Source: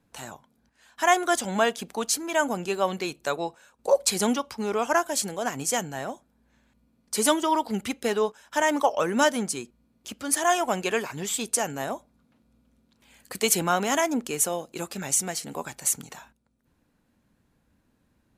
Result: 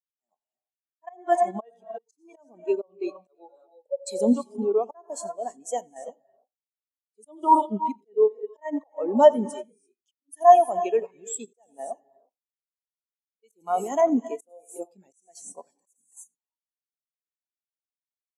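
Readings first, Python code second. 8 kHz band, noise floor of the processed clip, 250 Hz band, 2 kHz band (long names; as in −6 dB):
−14.5 dB, below −85 dBFS, −0.5 dB, −17.0 dB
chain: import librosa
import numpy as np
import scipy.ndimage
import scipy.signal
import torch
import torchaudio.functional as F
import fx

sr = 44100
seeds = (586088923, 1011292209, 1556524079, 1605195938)

p1 = fx.peak_eq(x, sr, hz=1500.0, db=-7.5, octaves=0.27)
p2 = p1 + fx.echo_single(p1, sr, ms=88, db=-13.0, dry=0)
p3 = fx.rev_gated(p2, sr, seeds[0], gate_ms=370, shape='rising', drr_db=7.5)
p4 = fx.auto_swell(p3, sr, attack_ms=265.0)
p5 = scipy.signal.sosfilt(scipy.signal.butter(2, 230.0, 'highpass', fs=sr, output='sos'), p4)
p6 = fx.high_shelf(p5, sr, hz=5600.0, db=6.0)
p7 = fx.level_steps(p6, sr, step_db=15)
p8 = p6 + (p7 * 10.0 ** (1.0 / 20.0))
y = fx.spectral_expand(p8, sr, expansion=2.5)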